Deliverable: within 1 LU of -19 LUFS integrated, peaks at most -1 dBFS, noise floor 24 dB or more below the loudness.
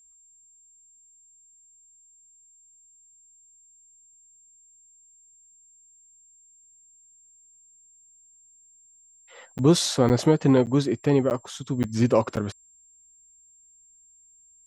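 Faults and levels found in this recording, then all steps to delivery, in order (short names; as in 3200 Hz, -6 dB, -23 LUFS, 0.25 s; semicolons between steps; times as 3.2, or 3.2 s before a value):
dropouts 6; longest dropout 9.2 ms; steady tone 7400 Hz; tone level -54 dBFS; loudness -22.5 LUFS; peak -7.0 dBFS; loudness target -19.0 LUFS
-> interpolate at 9.58/10.09/10.66/11.3/11.83/12.36, 9.2 ms; notch 7400 Hz, Q 30; gain +3.5 dB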